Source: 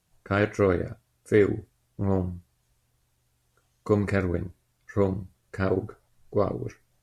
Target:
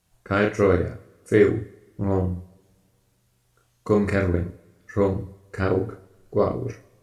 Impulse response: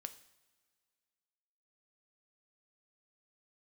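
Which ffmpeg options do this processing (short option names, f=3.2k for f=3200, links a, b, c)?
-filter_complex "[0:a]asplit=2[a][b];[1:a]atrim=start_sample=2205,adelay=34[c];[b][c]afir=irnorm=-1:irlink=0,volume=0.5dB[d];[a][d]amix=inputs=2:normalize=0,volume=2dB"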